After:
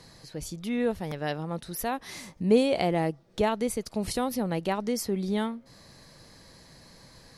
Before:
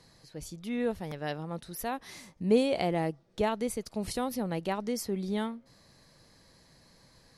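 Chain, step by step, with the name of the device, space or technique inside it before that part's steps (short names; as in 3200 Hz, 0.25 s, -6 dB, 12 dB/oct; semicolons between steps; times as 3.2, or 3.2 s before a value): parallel compression (in parallel at -2 dB: compressor, threshold -45 dBFS, peak gain reduction 24 dB); on the sum: gain +2.5 dB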